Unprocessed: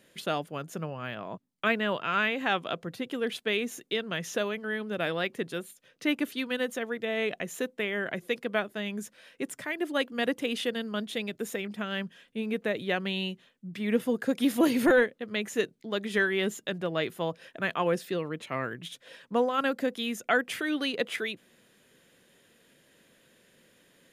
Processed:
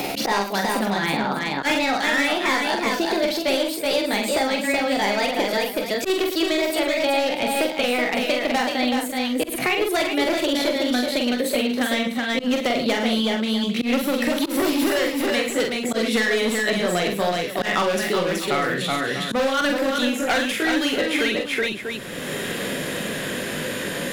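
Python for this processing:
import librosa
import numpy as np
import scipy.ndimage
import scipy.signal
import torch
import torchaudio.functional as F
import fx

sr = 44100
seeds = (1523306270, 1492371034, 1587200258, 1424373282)

y = fx.pitch_glide(x, sr, semitones=5.5, runs='ending unshifted')
y = np.clip(y, -10.0 ** (-27.5 / 20.0), 10.0 ** (-27.5 / 20.0))
y = fx.echo_multitap(y, sr, ms=(45, 108, 375, 411, 421, 643), db=(-4.0, -11.5, -5.0, -14.5, -12.0, -17.0))
y = fx.auto_swell(y, sr, attack_ms=137.0)
y = fx.band_squash(y, sr, depth_pct=100)
y = y * librosa.db_to_amplitude(9.0)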